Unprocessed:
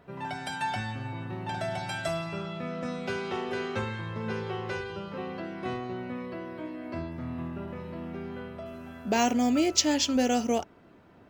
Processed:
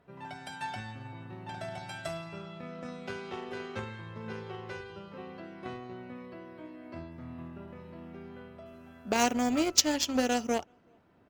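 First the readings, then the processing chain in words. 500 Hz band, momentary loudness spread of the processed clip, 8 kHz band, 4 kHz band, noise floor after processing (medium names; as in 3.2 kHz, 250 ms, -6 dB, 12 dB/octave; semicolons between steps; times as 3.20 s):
-4.0 dB, 19 LU, 0.0 dB, -1.5 dB, -62 dBFS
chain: speakerphone echo 380 ms, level -29 dB; Chebyshev shaper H 7 -20 dB, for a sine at -7 dBFS; trim +2 dB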